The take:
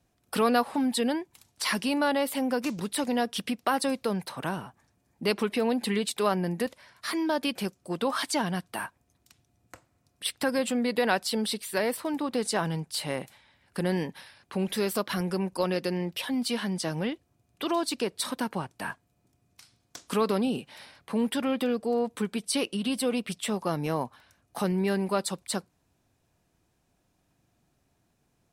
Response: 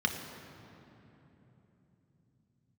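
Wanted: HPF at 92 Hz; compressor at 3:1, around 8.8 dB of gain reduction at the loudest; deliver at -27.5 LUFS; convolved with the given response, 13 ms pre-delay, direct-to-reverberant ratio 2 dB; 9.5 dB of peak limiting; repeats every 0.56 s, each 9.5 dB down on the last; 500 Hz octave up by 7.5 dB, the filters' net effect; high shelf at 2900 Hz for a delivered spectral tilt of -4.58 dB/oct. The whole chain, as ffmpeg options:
-filter_complex "[0:a]highpass=92,equalizer=f=500:t=o:g=8.5,highshelf=f=2.9k:g=5.5,acompressor=threshold=-27dB:ratio=3,alimiter=limit=-21.5dB:level=0:latency=1,aecho=1:1:560|1120|1680|2240:0.335|0.111|0.0365|0.012,asplit=2[a][b];[1:a]atrim=start_sample=2205,adelay=13[c];[b][c]afir=irnorm=-1:irlink=0,volume=-10dB[d];[a][d]amix=inputs=2:normalize=0,volume=2dB"

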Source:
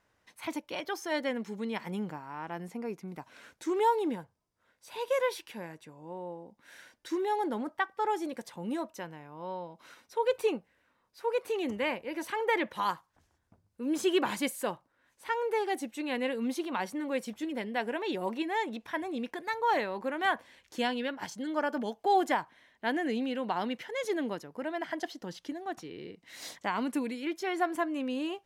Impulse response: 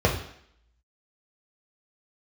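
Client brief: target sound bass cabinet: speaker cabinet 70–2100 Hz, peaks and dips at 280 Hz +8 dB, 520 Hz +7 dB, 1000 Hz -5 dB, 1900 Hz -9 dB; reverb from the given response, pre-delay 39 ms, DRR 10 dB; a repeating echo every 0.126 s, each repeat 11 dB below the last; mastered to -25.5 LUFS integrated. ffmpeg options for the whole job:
-filter_complex "[0:a]aecho=1:1:126|252|378:0.282|0.0789|0.0221,asplit=2[a][b];[1:a]atrim=start_sample=2205,adelay=39[c];[b][c]afir=irnorm=-1:irlink=0,volume=-26.5dB[d];[a][d]amix=inputs=2:normalize=0,highpass=f=70:w=0.5412,highpass=f=70:w=1.3066,equalizer=f=280:t=q:w=4:g=8,equalizer=f=520:t=q:w=4:g=7,equalizer=f=1k:t=q:w=4:g=-5,equalizer=f=1.9k:t=q:w=4:g=-9,lowpass=f=2.1k:w=0.5412,lowpass=f=2.1k:w=1.3066,volume=4dB"

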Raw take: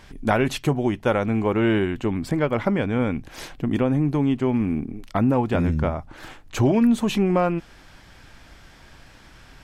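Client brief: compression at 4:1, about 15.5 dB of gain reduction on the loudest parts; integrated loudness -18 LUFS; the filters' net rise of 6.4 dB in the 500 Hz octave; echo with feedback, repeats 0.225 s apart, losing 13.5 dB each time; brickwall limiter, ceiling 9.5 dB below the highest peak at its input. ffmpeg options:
-af "equalizer=f=500:t=o:g=8,acompressor=threshold=-31dB:ratio=4,alimiter=level_in=1.5dB:limit=-24dB:level=0:latency=1,volume=-1.5dB,aecho=1:1:225|450:0.211|0.0444,volume=17dB"

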